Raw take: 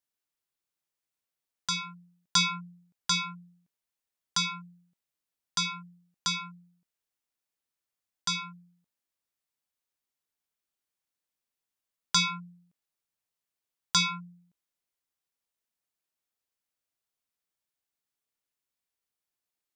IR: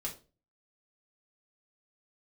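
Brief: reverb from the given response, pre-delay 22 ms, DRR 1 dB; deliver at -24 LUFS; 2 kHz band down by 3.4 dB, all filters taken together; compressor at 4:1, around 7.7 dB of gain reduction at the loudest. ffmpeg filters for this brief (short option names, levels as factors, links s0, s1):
-filter_complex "[0:a]equalizer=f=2000:t=o:g=-4.5,acompressor=threshold=0.0316:ratio=4,asplit=2[s0][s1];[1:a]atrim=start_sample=2205,adelay=22[s2];[s1][s2]afir=irnorm=-1:irlink=0,volume=0.841[s3];[s0][s3]amix=inputs=2:normalize=0,volume=2.99"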